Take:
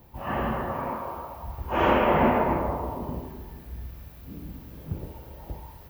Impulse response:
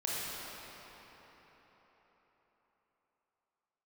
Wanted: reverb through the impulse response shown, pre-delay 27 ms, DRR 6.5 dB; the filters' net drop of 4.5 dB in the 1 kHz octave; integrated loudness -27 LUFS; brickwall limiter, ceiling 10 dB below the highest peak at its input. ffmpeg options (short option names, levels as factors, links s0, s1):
-filter_complex "[0:a]equalizer=f=1000:t=o:g=-5.5,alimiter=limit=0.106:level=0:latency=1,asplit=2[s0][s1];[1:a]atrim=start_sample=2205,adelay=27[s2];[s1][s2]afir=irnorm=-1:irlink=0,volume=0.237[s3];[s0][s3]amix=inputs=2:normalize=0,volume=1.88"